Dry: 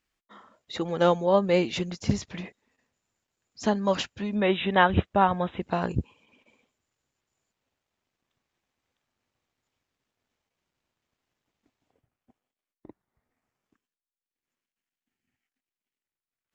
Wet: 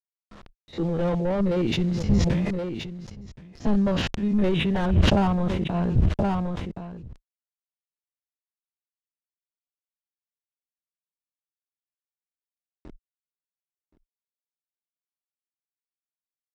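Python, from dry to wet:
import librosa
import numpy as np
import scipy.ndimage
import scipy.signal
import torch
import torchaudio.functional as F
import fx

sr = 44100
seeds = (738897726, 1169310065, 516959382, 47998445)

y = fx.spec_steps(x, sr, hold_ms=50)
y = fx.quant_dither(y, sr, seeds[0], bits=8, dither='none')
y = scipy.signal.sosfilt(scipy.signal.butter(2, 6100.0, 'lowpass', fs=sr, output='sos'), y)
y = fx.high_shelf(y, sr, hz=2900.0, db=7.0)
y = np.clip(y, -10.0 ** (-25.0 / 20.0), 10.0 ** (-25.0 / 20.0))
y = fx.tilt_eq(y, sr, slope=-4.0)
y = y + 10.0 ** (-22.0 / 20.0) * np.pad(y, (int(1074 * sr / 1000.0), 0))[:len(y)]
y = fx.sustainer(y, sr, db_per_s=23.0)
y = y * librosa.db_to_amplitude(-2.0)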